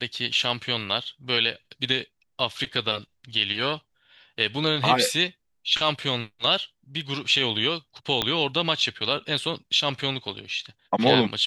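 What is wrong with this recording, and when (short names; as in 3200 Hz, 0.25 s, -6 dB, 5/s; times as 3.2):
8.22 pop -8 dBFS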